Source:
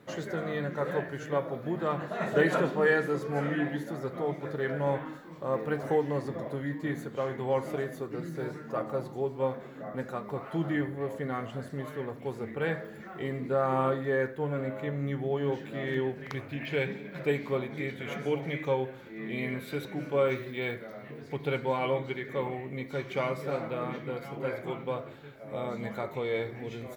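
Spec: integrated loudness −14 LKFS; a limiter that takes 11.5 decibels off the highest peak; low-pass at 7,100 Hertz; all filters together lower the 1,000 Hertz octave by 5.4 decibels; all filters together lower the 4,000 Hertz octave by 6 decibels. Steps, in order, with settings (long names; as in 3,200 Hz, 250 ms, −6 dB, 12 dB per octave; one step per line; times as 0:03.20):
low-pass filter 7,100 Hz
parametric band 1,000 Hz −7 dB
parametric band 4,000 Hz −7.5 dB
level +22 dB
brickwall limiter −3 dBFS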